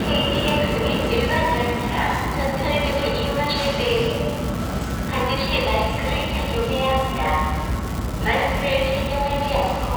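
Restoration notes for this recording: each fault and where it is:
crackle 480 per s -25 dBFS

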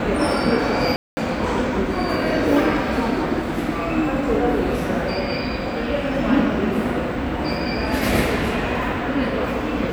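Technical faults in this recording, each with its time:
0.96–1.17 s: dropout 210 ms

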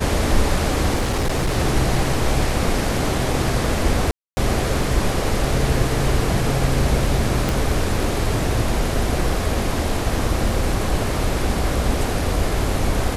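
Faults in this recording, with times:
0.95–1.58 s: clipped -16 dBFS
4.11–4.37 s: dropout 260 ms
7.49 s: pop

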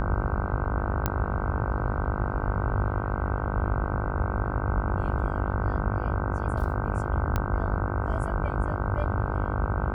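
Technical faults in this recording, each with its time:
buzz 50 Hz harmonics 31 -32 dBFS
1.06 s: pop -10 dBFS
7.36 s: pop -13 dBFS

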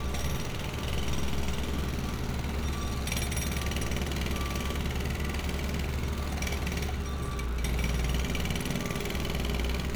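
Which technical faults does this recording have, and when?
crackle 200 per s -35 dBFS

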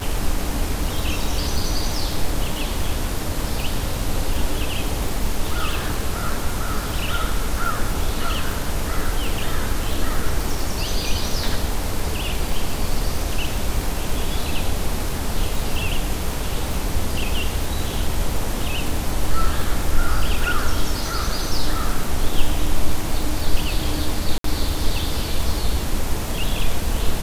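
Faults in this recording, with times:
crackle 72 per s -23 dBFS
24.38–24.44 s: dropout 63 ms

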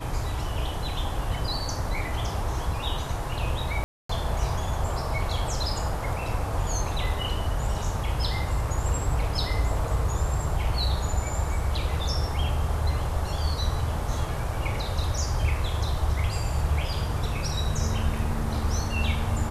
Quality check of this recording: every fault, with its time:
3.84–4.09 s: dropout 254 ms

